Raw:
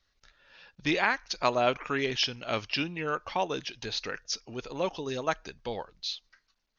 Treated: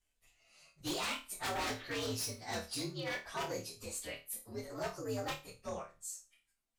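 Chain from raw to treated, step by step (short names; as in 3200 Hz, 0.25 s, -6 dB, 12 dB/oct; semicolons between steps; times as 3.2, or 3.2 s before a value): inharmonic rescaling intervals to 123%; wavefolder -28 dBFS; flutter echo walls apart 4.6 m, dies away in 0.28 s; gain -4.5 dB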